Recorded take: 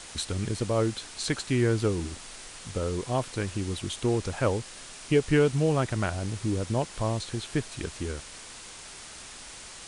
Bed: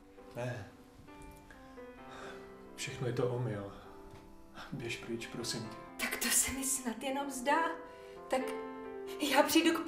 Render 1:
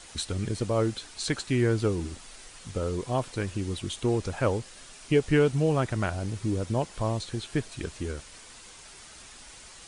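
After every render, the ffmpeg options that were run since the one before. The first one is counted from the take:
-af "afftdn=nr=6:nf=-45"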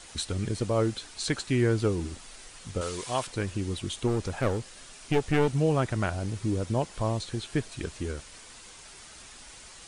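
-filter_complex "[0:a]asettb=1/sr,asplit=3[a][b][c];[a]atrim=end=2.814[d];[b]atrim=start=2.81:end=3.27,asetpts=PTS-STARTPTS,afade=t=in:d=0.004:c=qsin,afade=t=out:st=0.456:d=0.004:c=qsin,tiltshelf=f=760:g=-8.5[e];[c]atrim=start=3.266[f];[d][e]acrossfade=d=0.004:c1=hsin:c2=qsin[g];[g][f]acrossfade=d=0.004:c1=qsin:c2=hsin,asettb=1/sr,asplit=3[h][i][j];[h]atrim=end=4.074[k];[i]atrim=start=4.07:end=5.55,asetpts=PTS-STARTPTS,afade=t=in:d=0.004:c=qsin,afade=t=out:st=1.476:d=0.004:c=qsin,aeval=exprs='clip(val(0),-1,0.0398)':c=same[l];[j]atrim=start=5.546[m];[k][l]acrossfade=d=0.004:c1=hsin:c2=qsin[n];[n][m]acrossfade=d=0.004:c1=qsin:c2=hsin"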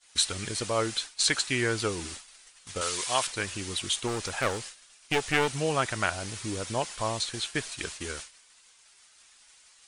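-af "agate=range=-33dB:threshold=-36dB:ratio=3:detection=peak,tiltshelf=f=660:g=-9"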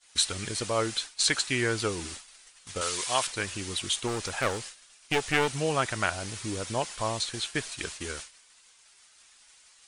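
-af anull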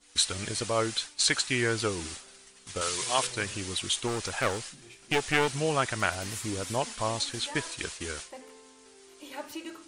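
-filter_complex "[1:a]volume=-12.5dB[a];[0:a][a]amix=inputs=2:normalize=0"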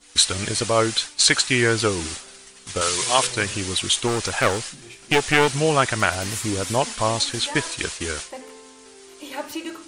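-af "volume=8.5dB,alimiter=limit=-3dB:level=0:latency=1"

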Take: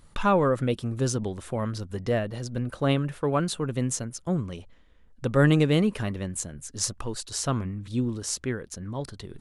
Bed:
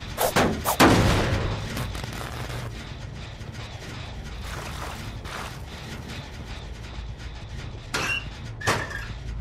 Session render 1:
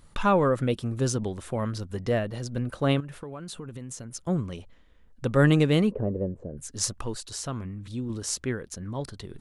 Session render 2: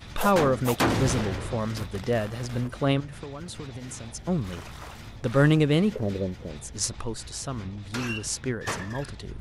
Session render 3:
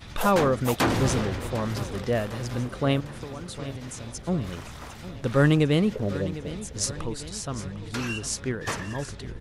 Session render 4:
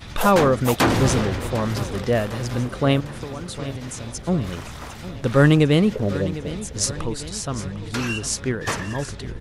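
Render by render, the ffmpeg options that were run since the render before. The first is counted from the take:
-filter_complex "[0:a]asettb=1/sr,asplit=3[a][b][c];[a]atrim=end=3.004[d];[b]atrim=start=3:end=4.13,asetpts=PTS-STARTPTS,afade=t=in:d=0.004:c=qsin,afade=t=out:st=1.126:d=0.004:c=qsin,acompressor=threshold=-34dB:ratio=12:attack=3.2:release=140:knee=1:detection=peak[e];[c]atrim=start=4.126[f];[d][e]acrossfade=d=0.004:c1=hsin:c2=qsin[g];[g][f]acrossfade=d=0.004:c1=qsin:c2=hsin,asplit=3[h][i][j];[h]afade=t=out:st=5.9:d=0.02[k];[i]lowpass=f=500:t=q:w=3.4,afade=t=in:st=5.9:d=0.02,afade=t=out:st=6.56:d=0.02[l];[j]afade=t=in:st=6.56:d=0.02[m];[k][l][m]amix=inputs=3:normalize=0,asettb=1/sr,asplit=3[n][o][p];[n]atrim=end=7.164[q];[o]atrim=start=7.16:end=8.1,asetpts=PTS-STARTPTS,afade=t=in:d=0.004:c=qsin,afade=t=out:st=0.936:d=0.004:c=qsin,acompressor=threshold=-39dB:ratio=1.5:attack=3.2:release=140:knee=1:detection=peak[r];[p]atrim=start=8.096[s];[q][r]acrossfade=d=0.004:c1=hsin:c2=qsin[t];[t][s]acrossfade=d=0.004:c1=qsin:c2=hsin"
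-filter_complex "[1:a]volume=-7.5dB[a];[0:a][a]amix=inputs=2:normalize=0"
-af "aecho=1:1:753|1506|2259|3012|3765:0.178|0.0996|0.0558|0.0312|0.0175"
-af "volume=5dB"

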